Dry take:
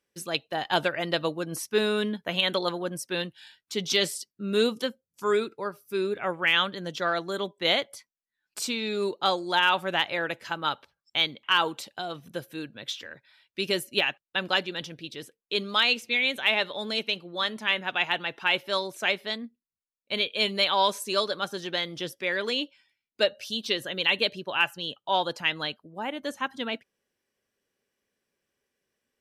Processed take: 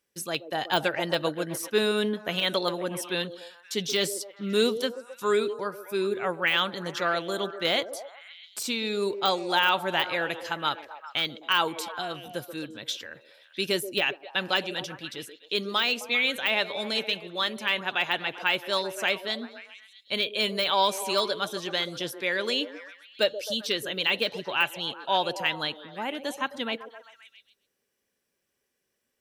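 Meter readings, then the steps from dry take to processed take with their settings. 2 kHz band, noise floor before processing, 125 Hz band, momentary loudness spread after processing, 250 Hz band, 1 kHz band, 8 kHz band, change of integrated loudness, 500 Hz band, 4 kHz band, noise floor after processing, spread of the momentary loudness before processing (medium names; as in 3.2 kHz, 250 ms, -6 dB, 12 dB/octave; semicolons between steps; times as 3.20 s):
-0.5 dB, under -85 dBFS, 0.0 dB, 11 LU, 0.0 dB, 0.0 dB, +2.0 dB, -0.5 dB, +0.5 dB, -0.5 dB, -79 dBFS, 13 LU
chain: de-esser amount 65%; treble shelf 6.3 kHz +7.5 dB; repeats whose band climbs or falls 131 ms, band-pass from 420 Hz, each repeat 0.7 oct, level -8 dB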